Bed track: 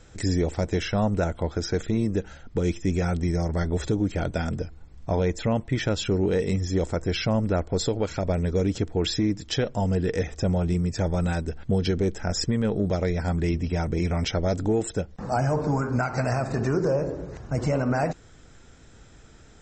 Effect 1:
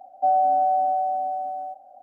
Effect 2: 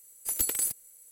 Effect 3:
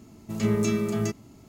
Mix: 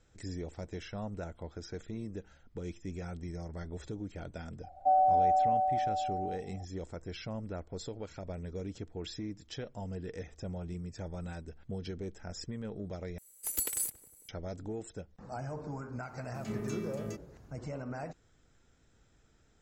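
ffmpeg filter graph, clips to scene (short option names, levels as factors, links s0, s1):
-filter_complex "[0:a]volume=0.158[s0];[1:a]aresample=22050,aresample=44100[s1];[2:a]asplit=2[s2][s3];[s3]adelay=182,lowpass=f=820:p=1,volume=0.266,asplit=2[s4][s5];[s5]adelay=182,lowpass=f=820:p=1,volume=0.51,asplit=2[s6][s7];[s7]adelay=182,lowpass=f=820:p=1,volume=0.51,asplit=2[s8][s9];[s9]adelay=182,lowpass=f=820:p=1,volume=0.51,asplit=2[s10][s11];[s11]adelay=182,lowpass=f=820:p=1,volume=0.51[s12];[s2][s4][s6][s8][s10][s12]amix=inputs=6:normalize=0[s13];[s0]asplit=2[s14][s15];[s14]atrim=end=13.184[s16];[s13]atrim=end=1.11,asetpts=PTS-STARTPTS,volume=0.562[s17];[s15]atrim=start=14.286[s18];[s1]atrim=end=2.02,asetpts=PTS-STARTPTS,volume=0.531,afade=t=in:d=0.004:c=hsin,afade=t=out:st=2.016:d=0.004:c=hsin,adelay=4630[s19];[3:a]atrim=end=1.48,asetpts=PTS-STARTPTS,volume=0.2,afade=t=in:d=0.004:c=hsin,afade=t=out:st=1.476:d=0.004:c=hsin,adelay=16050[s20];[s16][s17]acrossfade=d=0.004:c1=hsin:c2=hsin[s21];[s21][s18]acrossfade=d=0.004:c1=hsin:c2=hsin[s22];[s22][s19][s20]amix=inputs=3:normalize=0"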